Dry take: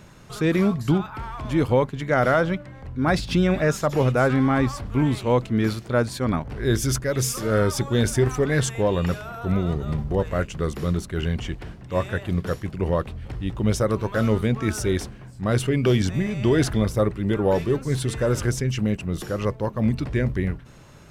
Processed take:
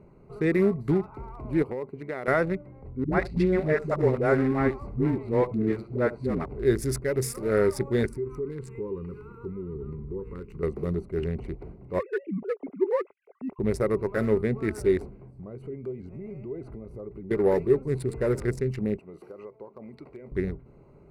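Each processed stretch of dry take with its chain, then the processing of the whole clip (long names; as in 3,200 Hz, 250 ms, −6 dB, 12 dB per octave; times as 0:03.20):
0:01.62–0:02.28: high-pass filter 260 Hz 6 dB per octave + downward compressor 10 to 1, threshold −24 dBFS
0:03.04–0:06.46: high-frequency loss of the air 70 metres + all-pass dispersion highs, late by 86 ms, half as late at 330 Hz + single-tap delay 73 ms −15.5 dB
0:08.06–0:10.63: Chebyshev band-stop filter 440–1,000 Hz + downward compressor 8 to 1, threshold −27 dBFS
0:11.99–0:13.59: three sine waves on the formant tracks + low-shelf EQ 370 Hz −4 dB
0:15.09–0:17.31: downward compressor 8 to 1, threshold −31 dBFS + pitch modulation by a square or saw wave saw up 3.3 Hz, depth 100 cents
0:18.99–0:20.32: high-pass filter 1,000 Hz 6 dB per octave + downward compressor 16 to 1, threshold −33 dBFS
whole clip: adaptive Wiener filter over 25 samples; thirty-one-band graphic EQ 100 Hz −7 dB, 400 Hz +10 dB, 2,000 Hz +10 dB, 3,150 Hz −11 dB, 6,300 Hz −7 dB, 10,000 Hz +5 dB; level −5 dB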